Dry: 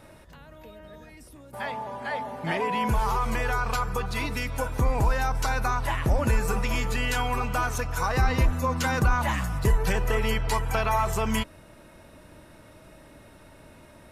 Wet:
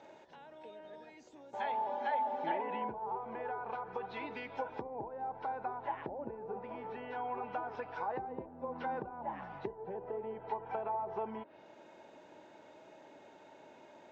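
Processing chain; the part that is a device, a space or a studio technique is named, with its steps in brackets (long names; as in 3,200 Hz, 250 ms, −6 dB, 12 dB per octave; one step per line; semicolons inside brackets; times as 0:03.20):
treble cut that deepens with the level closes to 650 Hz, closed at −20 dBFS
0:01.89–0:02.82: comb filter 3.5 ms, depth 61%
hearing aid with frequency lowering (hearing-aid frequency compression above 3,600 Hz 1.5 to 1; downward compressor 2.5 to 1, threshold −31 dBFS, peak gain reduction 10 dB; loudspeaker in its box 330–5,400 Hz, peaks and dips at 390 Hz +4 dB, 840 Hz +8 dB, 1,200 Hz −9 dB, 1,900 Hz −4 dB, 2,700 Hz −3 dB, 4,600 Hz −6 dB)
level −4 dB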